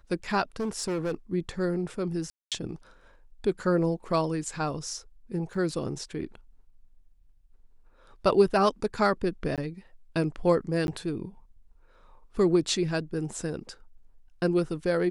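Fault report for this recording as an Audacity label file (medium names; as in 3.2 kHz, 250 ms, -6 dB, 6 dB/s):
0.600000	1.150000	clipped -26 dBFS
2.300000	2.520000	dropout 217 ms
5.540000	5.540000	dropout 3.3 ms
9.560000	9.580000	dropout 17 ms
10.870000	10.880000	dropout 11 ms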